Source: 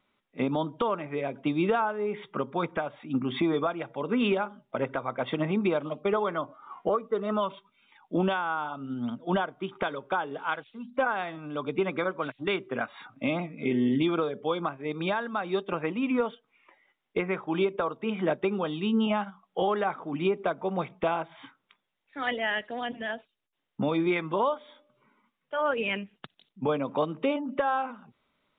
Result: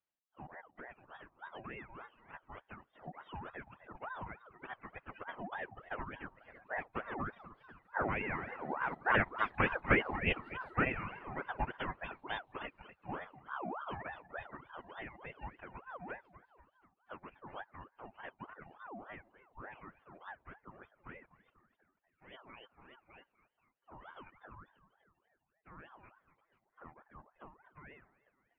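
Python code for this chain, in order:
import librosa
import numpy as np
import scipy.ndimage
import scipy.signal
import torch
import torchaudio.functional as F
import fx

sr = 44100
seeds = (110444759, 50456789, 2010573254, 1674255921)

y = fx.doppler_pass(x, sr, speed_mps=8, closest_m=4.8, pass_at_s=9.7)
y = fx.peak_eq(y, sr, hz=170.0, db=-6.0, octaves=0.26)
y = fx.pitch_keep_formants(y, sr, semitones=-10.5)
y = fx.echo_feedback(y, sr, ms=244, feedback_pct=51, wet_db=-11.0)
y = fx.dereverb_blind(y, sr, rt60_s=1.0)
y = fx.ring_lfo(y, sr, carrier_hz=870.0, swing_pct=50, hz=3.4)
y = y * 10.0 ** (5.5 / 20.0)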